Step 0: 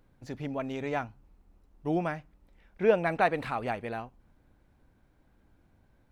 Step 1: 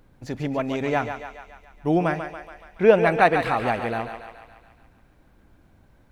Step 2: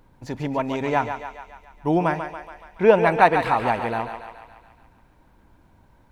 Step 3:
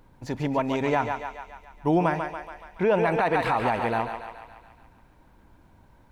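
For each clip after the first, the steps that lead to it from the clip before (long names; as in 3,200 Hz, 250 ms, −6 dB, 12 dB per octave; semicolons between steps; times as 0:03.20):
feedback echo with a high-pass in the loop 141 ms, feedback 61%, high-pass 390 Hz, level −7.5 dB; level +8 dB
parametric band 940 Hz +11.5 dB 0.22 octaves
brickwall limiter −13.5 dBFS, peak gain reduction 11.5 dB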